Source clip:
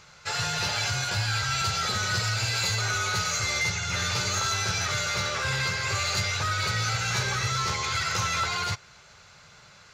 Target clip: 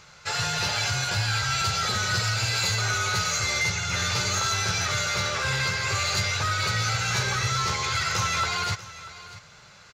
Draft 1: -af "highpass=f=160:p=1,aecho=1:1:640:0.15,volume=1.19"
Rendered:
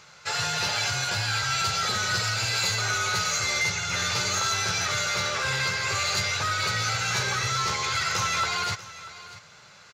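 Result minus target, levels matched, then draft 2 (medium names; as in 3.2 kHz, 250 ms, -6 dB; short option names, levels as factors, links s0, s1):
125 Hz band -4.5 dB
-af "aecho=1:1:640:0.15,volume=1.19"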